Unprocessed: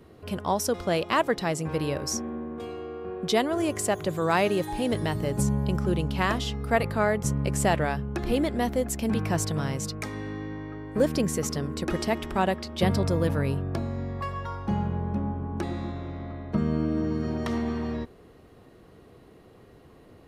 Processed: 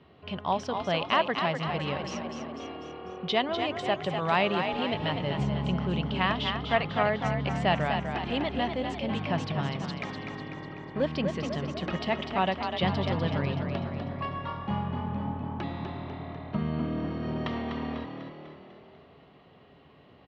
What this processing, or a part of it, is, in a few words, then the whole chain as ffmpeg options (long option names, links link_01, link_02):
frequency-shifting delay pedal into a guitar cabinet: -filter_complex "[0:a]asplit=8[link_01][link_02][link_03][link_04][link_05][link_06][link_07][link_08];[link_02]adelay=248,afreqshift=38,volume=-6.5dB[link_09];[link_03]adelay=496,afreqshift=76,volume=-11.9dB[link_10];[link_04]adelay=744,afreqshift=114,volume=-17.2dB[link_11];[link_05]adelay=992,afreqshift=152,volume=-22.6dB[link_12];[link_06]adelay=1240,afreqshift=190,volume=-27.9dB[link_13];[link_07]adelay=1488,afreqshift=228,volume=-33.3dB[link_14];[link_08]adelay=1736,afreqshift=266,volume=-38.6dB[link_15];[link_01][link_09][link_10][link_11][link_12][link_13][link_14][link_15]amix=inputs=8:normalize=0,highpass=100,equalizer=frequency=110:width_type=q:width=4:gain=-7,equalizer=frequency=220:width_type=q:width=4:gain=-5,equalizer=frequency=330:width_type=q:width=4:gain=-9,equalizer=frequency=480:width_type=q:width=4:gain=-8,equalizer=frequency=1500:width_type=q:width=4:gain=-4,equalizer=frequency=3000:width_type=q:width=4:gain=5,lowpass=frequency=3900:width=0.5412,lowpass=frequency=3900:width=1.3066"